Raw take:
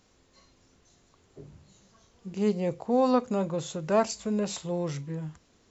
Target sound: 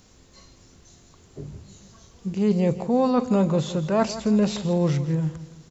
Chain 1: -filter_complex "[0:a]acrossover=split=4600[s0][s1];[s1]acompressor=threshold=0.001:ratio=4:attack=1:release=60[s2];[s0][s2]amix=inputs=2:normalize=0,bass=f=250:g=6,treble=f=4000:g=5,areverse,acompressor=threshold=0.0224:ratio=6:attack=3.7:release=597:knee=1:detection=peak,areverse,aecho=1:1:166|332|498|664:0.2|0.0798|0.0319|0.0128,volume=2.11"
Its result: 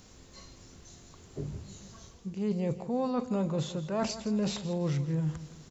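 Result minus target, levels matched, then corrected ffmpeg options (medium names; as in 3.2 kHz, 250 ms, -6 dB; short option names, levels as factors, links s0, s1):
compression: peak gain reduction +10 dB
-filter_complex "[0:a]acrossover=split=4600[s0][s1];[s1]acompressor=threshold=0.001:ratio=4:attack=1:release=60[s2];[s0][s2]amix=inputs=2:normalize=0,bass=f=250:g=6,treble=f=4000:g=5,areverse,acompressor=threshold=0.0891:ratio=6:attack=3.7:release=597:knee=1:detection=peak,areverse,aecho=1:1:166|332|498|664:0.2|0.0798|0.0319|0.0128,volume=2.11"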